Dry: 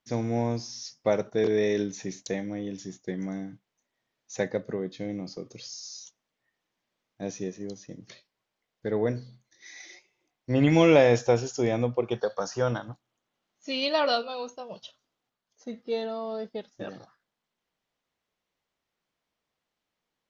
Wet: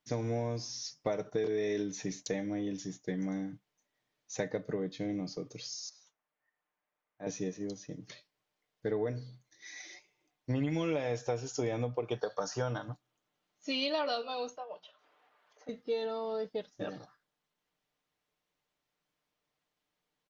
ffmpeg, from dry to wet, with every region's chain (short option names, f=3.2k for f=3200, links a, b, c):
-filter_complex "[0:a]asettb=1/sr,asplit=3[a][b][c];[a]atrim=end=5.894[d];[b]atrim=start=5.89:end=7.27,asetpts=PTS-STARTPTS,afade=t=in:d=0.004:c=qsin,afade=t=out:st=1.376:d=0.004:c=qsin,acrossover=split=580 2200:gain=0.251 1 0.112[e][f][g];[e][f][g]amix=inputs=3:normalize=0,asplit=2[h][i];[i]adelay=20,volume=-12dB[j];[h][j]amix=inputs=2:normalize=0,atrim=end_sample=60858[k];[c]atrim=start=7.266[l];[d][k]acrossfade=d=0.004:c1=hsin:c2=qsin[m];[m][l]acrossfade=d=0.004:c1=qsin:c2=hsin,asettb=1/sr,asplit=3[n][o][p];[n]atrim=end=14.574[q];[o]atrim=start=14.57:end=15.69,asetpts=PTS-STARTPTS,afade=t=in:d=0.004:c=qsin,afade=t=out:st=1.116:d=0.004:c=qsin,acrossover=split=420 2700:gain=0.0631 1 0.0891[r][s][t];[r][s][t]amix=inputs=3:normalize=0,bandreject=f=60:t=h:w=6,bandreject=f=120:t=h:w=6,bandreject=f=180:t=h:w=6,bandreject=f=240:t=h:w=6,bandreject=f=300:t=h:w=6,bandreject=f=360:t=h:w=6,acompressor=mode=upward:threshold=-49dB:ratio=2.5:attack=3.2:release=140:knee=2.83:detection=peak[u];[p]atrim=start=15.686[v];[q][u]acrossfade=d=0.004:c1=hsin:c2=qsin[w];[w][v]acrossfade=d=0.004:c1=qsin:c2=hsin,aecho=1:1:6.7:0.42,acompressor=threshold=-27dB:ratio=8,volume=-2dB"